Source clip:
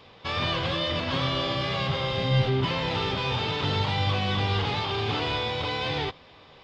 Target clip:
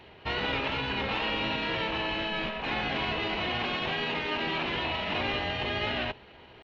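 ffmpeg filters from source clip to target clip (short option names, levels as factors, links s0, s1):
-af "asetrate=36028,aresample=44100,atempo=1.22405,afftfilt=real='re*lt(hypot(re,im),0.178)':imag='im*lt(hypot(re,im),0.178)':win_size=1024:overlap=0.75"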